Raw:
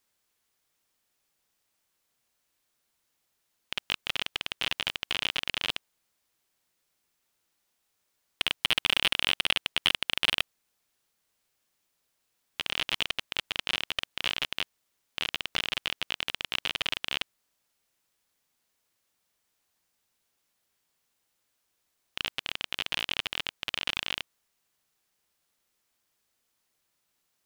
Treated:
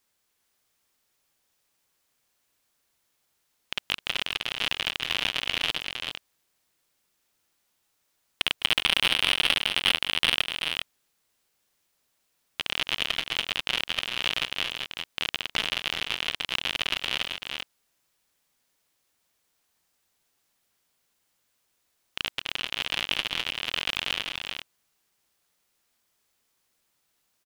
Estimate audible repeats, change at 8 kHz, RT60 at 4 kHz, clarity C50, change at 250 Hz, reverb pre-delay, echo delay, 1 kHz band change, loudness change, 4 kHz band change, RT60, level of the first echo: 2, +3.5 dB, none, none, +3.5 dB, none, 0.207 s, +3.5 dB, +3.0 dB, +3.5 dB, none, -14.5 dB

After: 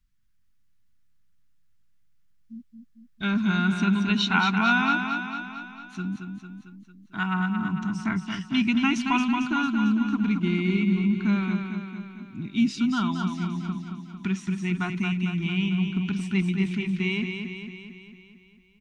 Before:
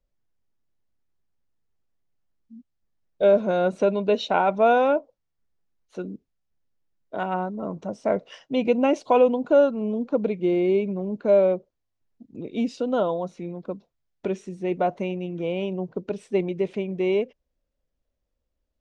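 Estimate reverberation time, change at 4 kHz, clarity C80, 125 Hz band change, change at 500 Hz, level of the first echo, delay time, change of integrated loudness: none, +8.0 dB, none, +7.5 dB, -18.5 dB, -6.0 dB, 0.225 s, -1.5 dB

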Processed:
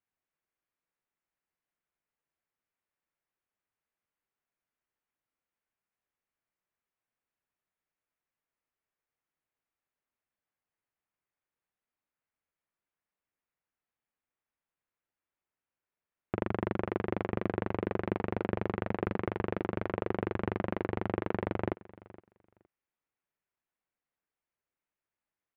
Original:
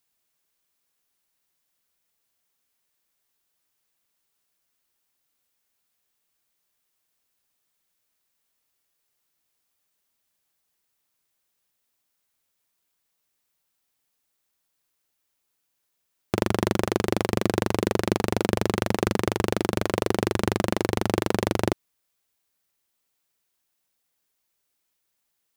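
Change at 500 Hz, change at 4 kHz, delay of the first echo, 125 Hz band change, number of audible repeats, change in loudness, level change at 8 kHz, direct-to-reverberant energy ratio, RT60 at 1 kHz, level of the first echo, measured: -8.5 dB, -20.5 dB, 0.466 s, -8.5 dB, 1, -9.0 dB, under -40 dB, none, none, -20.0 dB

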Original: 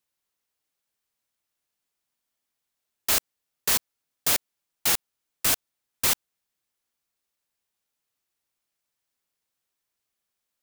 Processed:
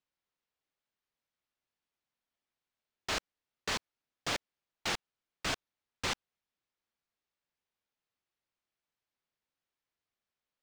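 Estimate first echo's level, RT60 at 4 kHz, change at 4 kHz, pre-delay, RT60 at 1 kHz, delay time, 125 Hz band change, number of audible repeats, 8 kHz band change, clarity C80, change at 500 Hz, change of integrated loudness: none, none, -7.5 dB, none, none, none, -3.5 dB, none, -16.5 dB, none, -4.0 dB, -12.5 dB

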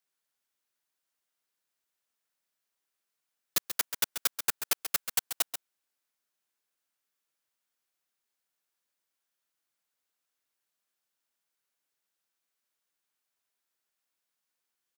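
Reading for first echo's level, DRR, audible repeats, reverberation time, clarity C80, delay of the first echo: -9.5 dB, none, 1, none, none, 0.135 s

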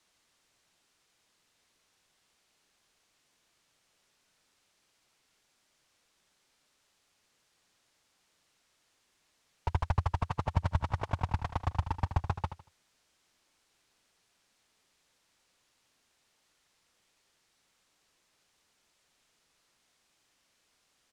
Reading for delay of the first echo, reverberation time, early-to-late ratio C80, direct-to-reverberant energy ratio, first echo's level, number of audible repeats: 78 ms, none, none, none, -11.0 dB, 3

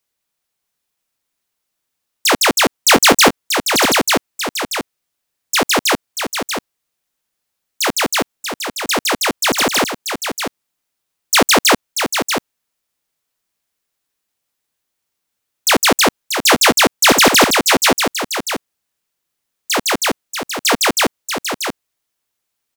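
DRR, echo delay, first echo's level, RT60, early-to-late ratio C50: none, 0.636 s, -7.0 dB, none, none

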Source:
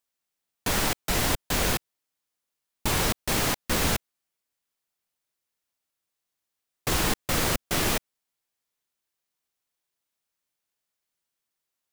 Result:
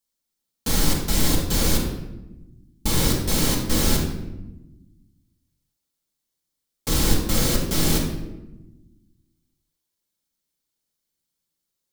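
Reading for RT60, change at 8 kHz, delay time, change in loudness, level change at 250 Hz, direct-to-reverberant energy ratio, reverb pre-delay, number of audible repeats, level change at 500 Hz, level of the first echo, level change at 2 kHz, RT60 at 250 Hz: 1.0 s, +4.0 dB, none, +3.5 dB, +7.5 dB, -4.0 dB, 4 ms, none, +2.5 dB, none, -2.5 dB, 1.8 s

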